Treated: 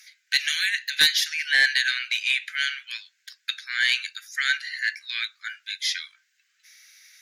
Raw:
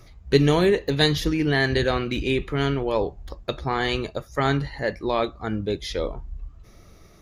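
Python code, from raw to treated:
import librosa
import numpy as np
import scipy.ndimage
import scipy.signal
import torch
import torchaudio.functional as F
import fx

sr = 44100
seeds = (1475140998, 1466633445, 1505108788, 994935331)

p1 = scipy.signal.sosfilt(scipy.signal.cheby1(6, 3, 1500.0, 'highpass', fs=sr, output='sos'), x)
p2 = fx.fold_sine(p1, sr, drive_db=8, ceiling_db=-9.5)
y = p1 + F.gain(torch.from_numpy(p2), -6.0).numpy()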